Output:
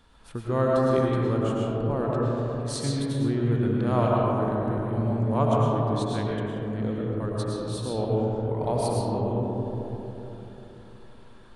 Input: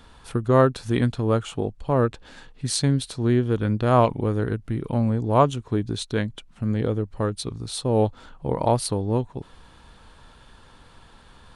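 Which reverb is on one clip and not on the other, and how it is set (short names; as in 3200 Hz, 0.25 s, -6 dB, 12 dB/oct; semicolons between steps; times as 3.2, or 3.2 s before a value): digital reverb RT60 3.6 s, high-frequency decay 0.25×, pre-delay 70 ms, DRR -4.5 dB; gain -9.5 dB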